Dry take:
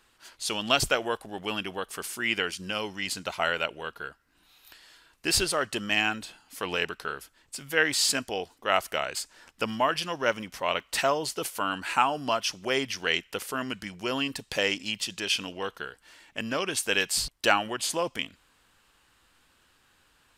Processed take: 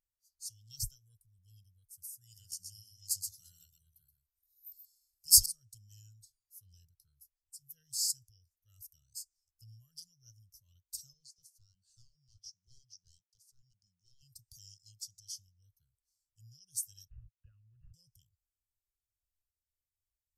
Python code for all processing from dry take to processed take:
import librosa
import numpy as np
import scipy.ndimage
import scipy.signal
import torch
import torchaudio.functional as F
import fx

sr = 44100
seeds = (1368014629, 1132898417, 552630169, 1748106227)

y = fx.chain(x, sr, fx.high_shelf(hz=3600.0, db=9.0),
    fx.echo_single(ms=126, db=-4.0), at=(2.21, 5.46))
y = fx.chain(y, sr, fx.highpass(hz=180.0, slope=12),
    fx.clip_hard(threshold_db=-26.0),
    fx.air_absorb(metres=75.0), at=(11.13, 14.22))
y = fx.chain(y, sr, fx.highpass(hz=170.0, slope=6),
    fx.resample_bad(factor=8, down='none', up='filtered'),
    fx.band_squash(depth_pct=70), at=(17.08, 17.94))
y = scipy.signal.sosfilt(scipy.signal.ellip(3, 1.0, 40, [110.0, 5400.0], 'bandstop', fs=sr, output='sos'), y)
y = fx.peak_eq(y, sr, hz=13000.0, db=11.0, octaves=0.43)
y = fx.spectral_expand(y, sr, expansion=1.5)
y = F.gain(torch.from_numpy(y), -2.0).numpy()